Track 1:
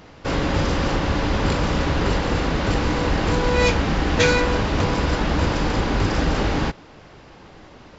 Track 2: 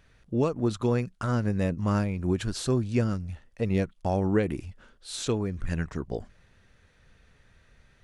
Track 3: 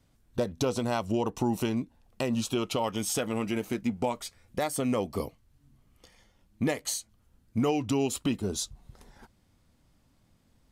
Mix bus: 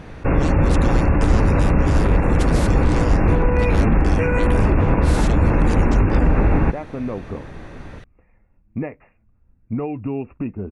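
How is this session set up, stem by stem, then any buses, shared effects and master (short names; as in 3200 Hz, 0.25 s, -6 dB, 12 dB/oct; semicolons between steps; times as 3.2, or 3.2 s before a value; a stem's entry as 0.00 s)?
+2.5 dB, 0.00 s, bus A, no send, dry
+0.5 dB, 0.00 s, no bus, no send, spectral compressor 4:1
-2.0 dB, 2.15 s, bus A, no send, dry
bus A: 0.0 dB, brick-wall FIR low-pass 2800 Hz; limiter -13 dBFS, peak gain reduction 9 dB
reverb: off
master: tilt -2 dB/oct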